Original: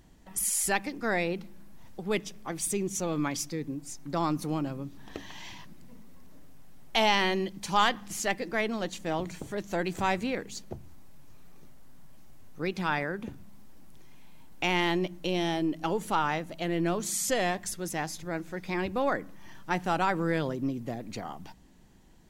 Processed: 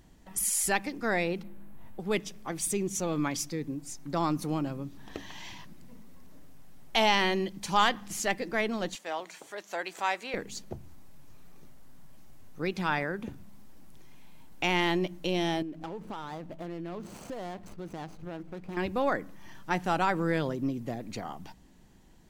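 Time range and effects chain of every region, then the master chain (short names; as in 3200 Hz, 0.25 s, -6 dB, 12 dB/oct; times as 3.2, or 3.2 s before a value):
1.43–2 bell 5600 Hz -14.5 dB 1.1 oct + doubler 20 ms -4 dB
8.95–10.34 HPF 640 Hz + high shelf 10000 Hz -5 dB
15.62–18.77 median filter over 25 samples + high shelf 5400 Hz -4.5 dB + compressor 5:1, threshold -35 dBFS
whole clip: dry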